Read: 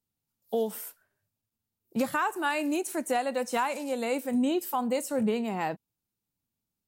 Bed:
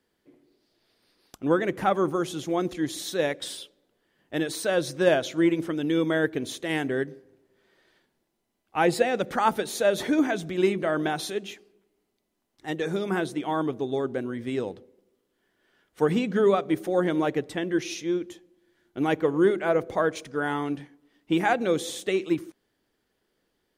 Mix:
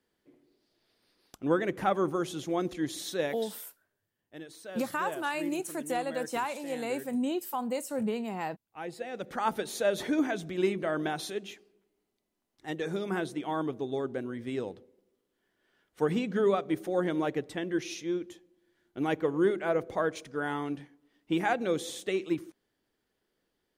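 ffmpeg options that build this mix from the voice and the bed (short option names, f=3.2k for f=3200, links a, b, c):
-filter_complex "[0:a]adelay=2800,volume=-4dB[a];[1:a]volume=8.5dB,afade=t=out:st=3.13:d=0.49:silence=0.211349,afade=t=in:st=8.98:d=0.63:silence=0.237137[b];[a][b]amix=inputs=2:normalize=0"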